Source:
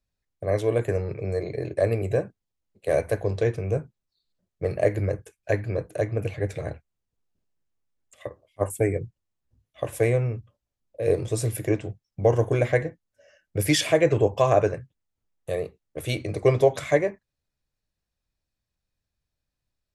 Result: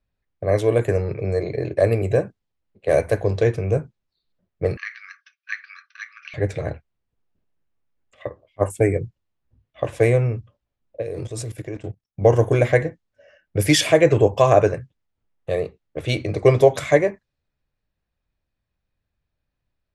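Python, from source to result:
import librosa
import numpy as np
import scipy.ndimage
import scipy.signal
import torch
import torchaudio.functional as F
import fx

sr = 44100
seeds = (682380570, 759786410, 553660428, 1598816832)

y = fx.env_lowpass(x, sr, base_hz=2900.0, full_db=-18.5)
y = fx.brickwall_bandpass(y, sr, low_hz=1100.0, high_hz=6200.0, at=(4.77, 6.34))
y = fx.level_steps(y, sr, step_db=17, at=(11.01, 12.2), fade=0.02)
y = y * librosa.db_to_amplitude(5.0)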